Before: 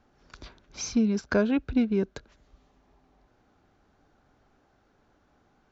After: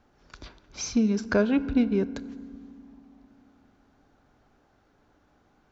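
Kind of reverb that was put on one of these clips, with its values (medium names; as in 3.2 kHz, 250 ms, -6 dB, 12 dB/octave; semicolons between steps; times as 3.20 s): FDN reverb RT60 2.3 s, low-frequency decay 1.5×, high-frequency decay 0.5×, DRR 14.5 dB; trim +1 dB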